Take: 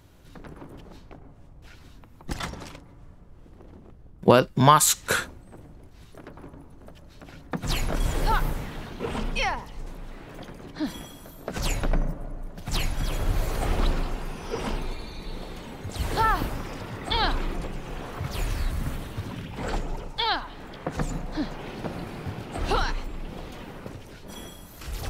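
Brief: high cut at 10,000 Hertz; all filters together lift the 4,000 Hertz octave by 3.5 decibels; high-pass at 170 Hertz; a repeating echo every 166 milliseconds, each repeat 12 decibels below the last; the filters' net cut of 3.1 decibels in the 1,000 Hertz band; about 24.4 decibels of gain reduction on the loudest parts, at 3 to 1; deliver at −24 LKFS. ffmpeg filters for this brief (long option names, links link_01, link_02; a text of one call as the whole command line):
ffmpeg -i in.wav -af "highpass=170,lowpass=10000,equalizer=frequency=1000:width_type=o:gain=-4,equalizer=frequency=4000:width_type=o:gain=4.5,acompressor=threshold=-48dB:ratio=3,aecho=1:1:166|332|498:0.251|0.0628|0.0157,volume=23dB" out.wav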